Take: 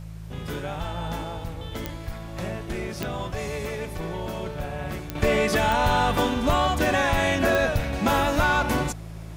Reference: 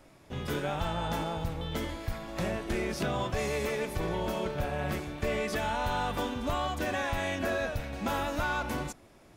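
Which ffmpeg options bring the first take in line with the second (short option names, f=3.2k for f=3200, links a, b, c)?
-af "adeclick=t=4,bandreject=f=54.4:t=h:w=4,bandreject=f=108.8:t=h:w=4,bandreject=f=163.2:t=h:w=4,agate=range=-21dB:threshold=-28dB,asetnsamples=n=441:p=0,asendcmd='5.15 volume volume -9.5dB',volume=0dB"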